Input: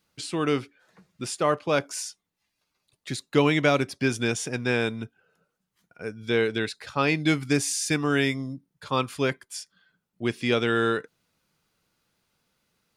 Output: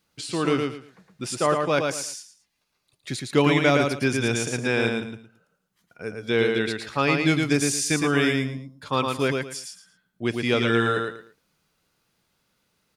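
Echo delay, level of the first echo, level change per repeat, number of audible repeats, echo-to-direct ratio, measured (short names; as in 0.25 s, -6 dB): 0.112 s, -4.0 dB, -12.5 dB, 3, -3.5 dB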